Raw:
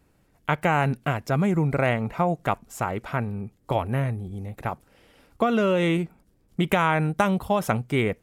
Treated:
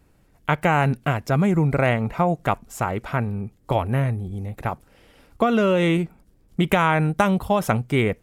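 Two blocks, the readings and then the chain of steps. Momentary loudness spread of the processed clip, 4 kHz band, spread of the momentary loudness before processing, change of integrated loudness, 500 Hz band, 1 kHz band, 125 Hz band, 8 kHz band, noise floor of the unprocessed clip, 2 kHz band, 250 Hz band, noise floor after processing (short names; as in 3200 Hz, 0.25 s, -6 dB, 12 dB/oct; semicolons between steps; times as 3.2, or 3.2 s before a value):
12 LU, +2.5 dB, 12 LU, +3.0 dB, +2.5 dB, +2.5 dB, +3.5 dB, +2.5 dB, -64 dBFS, +2.5 dB, +3.0 dB, -59 dBFS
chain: low shelf 65 Hz +6.5 dB; gain +2.5 dB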